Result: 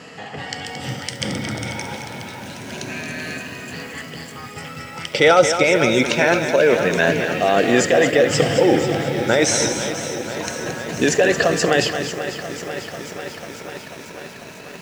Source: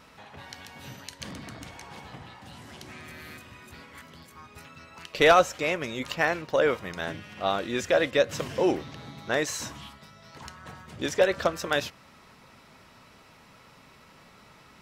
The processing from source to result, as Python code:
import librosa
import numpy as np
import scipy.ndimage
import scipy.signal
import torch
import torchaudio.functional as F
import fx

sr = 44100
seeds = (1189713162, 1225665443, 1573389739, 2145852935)

p1 = fx.spec_ripple(x, sr, per_octave=1.5, drift_hz=0.26, depth_db=9)
p2 = fx.over_compress(p1, sr, threshold_db=-28.0, ratio=-0.5)
p3 = p1 + (p2 * 10.0 ** (2.0 / 20.0))
p4 = fx.overload_stage(p3, sr, gain_db=34.5, at=(1.96, 2.72))
p5 = fx.cabinet(p4, sr, low_hz=100.0, low_slope=24, high_hz=9000.0, hz=(460.0, 1100.0, 3900.0), db=(3, -10, -5))
p6 = fx.echo_multitap(p5, sr, ms=(69, 223), db=(-19.5, -9.0))
p7 = fx.echo_crushed(p6, sr, ms=493, feedback_pct=80, bits=7, wet_db=-11.5)
y = p7 * 10.0 ** (4.5 / 20.0)